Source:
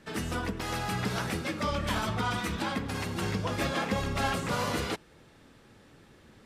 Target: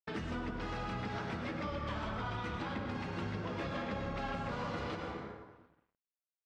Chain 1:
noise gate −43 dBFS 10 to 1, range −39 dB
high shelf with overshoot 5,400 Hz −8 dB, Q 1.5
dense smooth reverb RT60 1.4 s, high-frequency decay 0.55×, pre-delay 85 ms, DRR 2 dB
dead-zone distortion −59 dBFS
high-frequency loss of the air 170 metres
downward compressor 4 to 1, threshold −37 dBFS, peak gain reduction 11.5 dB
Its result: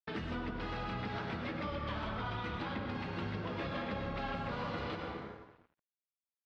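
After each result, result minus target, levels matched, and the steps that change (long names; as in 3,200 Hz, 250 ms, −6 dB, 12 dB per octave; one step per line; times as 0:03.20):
8,000 Hz band −7.5 dB; dead-zone distortion: distortion +8 dB
remove: high shelf with overshoot 5,400 Hz −8 dB, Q 1.5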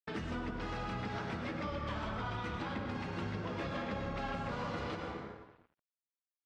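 dead-zone distortion: distortion +8 dB
change: dead-zone distortion −67.5 dBFS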